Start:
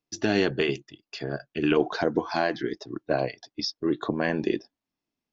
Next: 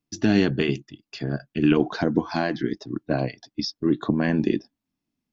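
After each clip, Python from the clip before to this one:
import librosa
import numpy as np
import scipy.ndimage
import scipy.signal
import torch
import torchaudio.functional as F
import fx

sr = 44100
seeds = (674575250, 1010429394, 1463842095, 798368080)

y = fx.low_shelf_res(x, sr, hz=330.0, db=7.0, q=1.5)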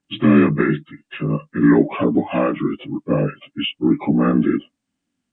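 y = fx.partial_stretch(x, sr, pct=81)
y = F.gain(torch.from_numpy(y), 7.5).numpy()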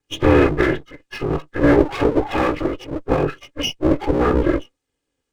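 y = fx.lower_of_two(x, sr, delay_ms=2.4)
y = F.gain(torch.from_numpy(y), 2.0).numpy()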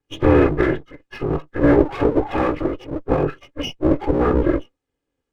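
y = fx.high_shelf(x, sr, hz=2600.0, db=-11.0)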